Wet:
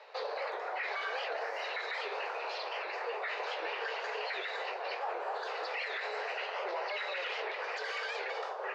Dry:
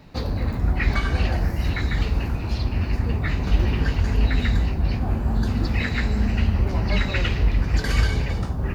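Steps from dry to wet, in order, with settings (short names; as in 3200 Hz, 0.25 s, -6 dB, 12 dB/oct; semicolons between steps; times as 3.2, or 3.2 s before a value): steep high-pass 440 Hz 72 dB/oct; limiter -29 dBFS, peak gain reduction 14 dB; air absorption 170 m; record warp 78 rpm, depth 160 cents; gain +2.5 dB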